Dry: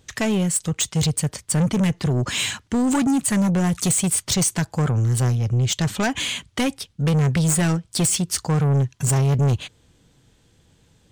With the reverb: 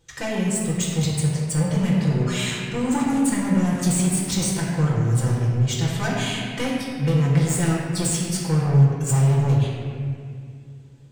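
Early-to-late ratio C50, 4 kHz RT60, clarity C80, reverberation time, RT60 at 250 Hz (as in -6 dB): -1.0 dB, 1.5 s, 1.0 dB, 2.3 s, 3.4 s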